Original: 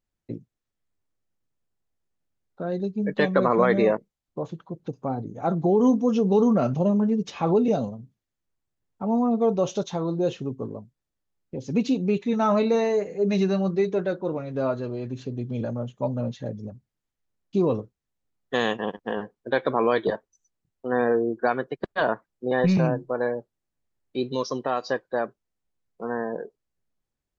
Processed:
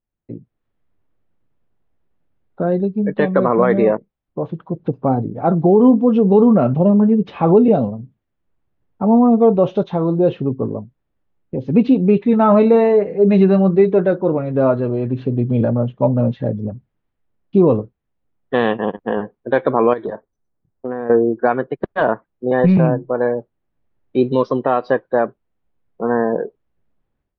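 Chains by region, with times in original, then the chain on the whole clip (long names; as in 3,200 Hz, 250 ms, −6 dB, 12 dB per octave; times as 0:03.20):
0:19.93–0:21.10: parametric band 2,800 Hz −11.5 dB 0.51 octaves + downward compressor 10 to 1, threshold −28 dBFS + one half of a high-frequency compander decoder only
whole clip: low-pass filter 3,600 Hz 24 dB per octave; high-shelf EQ 2,100 Hz −12 dB; automatic gain control gain up to 15 dB; level −1 dB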